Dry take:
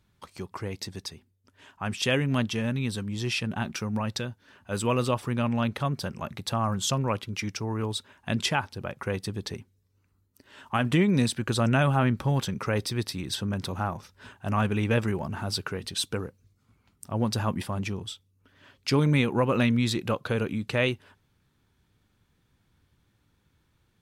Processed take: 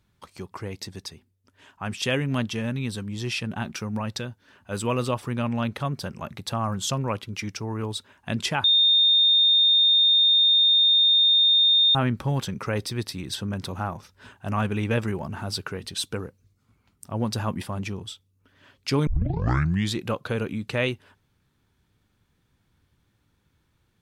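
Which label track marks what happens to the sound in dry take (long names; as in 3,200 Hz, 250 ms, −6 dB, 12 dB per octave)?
8.640000	11.950000	beep over 3,650 Hz −15 dBFS
19.070000	19.070000	tape start 0.87 s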